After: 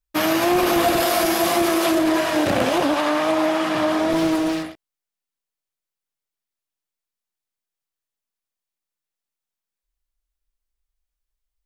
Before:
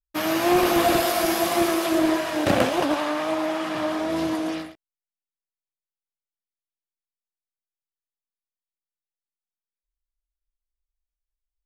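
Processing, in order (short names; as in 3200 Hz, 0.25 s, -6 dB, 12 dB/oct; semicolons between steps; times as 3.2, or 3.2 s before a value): 4.13–4.63 minimum comb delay 6.3 ms; limiter -16 dBFS, peak gain reduction 8.5 dB; gain +6 dB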